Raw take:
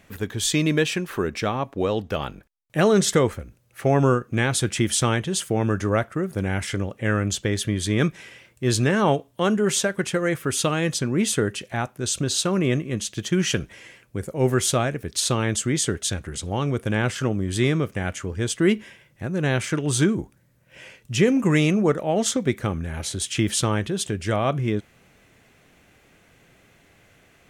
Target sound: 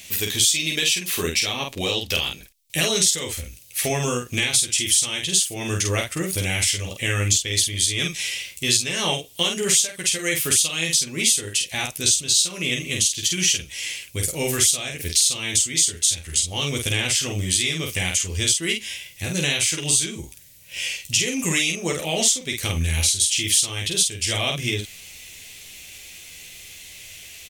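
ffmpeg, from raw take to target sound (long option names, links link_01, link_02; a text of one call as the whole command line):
ffmpeg -i in.wav -filter_complex "[0:a]asubboost=boost=3:cutoff=88,aexciter=amount=11.2:drive=4.5:freq=2200,acompressor=threshold=-20dB:ratio=4,asplit=2[link_01][link_02];[link_02]aecho=0:1:12|49:0.631|0.668[link_03];[link_01][link_03]amix=inputs=2:normalize=0,volume=-2dB" out.wav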